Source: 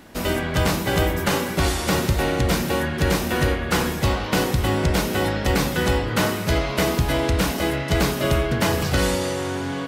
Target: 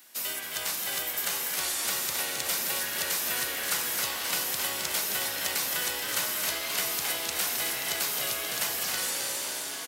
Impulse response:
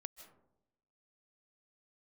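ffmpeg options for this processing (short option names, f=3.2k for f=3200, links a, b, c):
-filter_complex "[0:a]dynaudnorm=f=410:g=9:m=11.5dB,asplit=2[a][b];[b]asplit=7[c][d][e][f][g][h][i];[c]adelay=265,afreqshift=60,volume=-7.5dB[j];[d]adelay=530,afreqshift=120,volume=-12.4dB[k];[e]adelay=795,afreqshift=180,volume=-17.3dB[l];[f]adelay=1060,afreqshift=240,volume=-22.1dB[m];[g]adelay=1325,afreqshift=300,volume=-27dB[n];[h]adelay=1590,afreqshift=360,volume=-31.9dB[o];[i]adelay=1855,afreqshift=420,volume=-36.8dB[p];[j][k][l][m][n][o][p]amix=inputs=7:normalize=0[q];[a][q]amix=inputs=2:normalize=0,acrossover=split=170|340|2300[r][s][t][u];[r]acompressor=threshold=-19dB:ratio=4[v];[s]acompressor=threshold=-28dB:ratio=4[w];[t]acompressor=threshold=-20dB:ratio=4[x];[u]acompressor=threshold=-30dB:ratio=4[y];[v][w][x][y]amix=inputs=4:normalize=0,aderivative,volume=2dB"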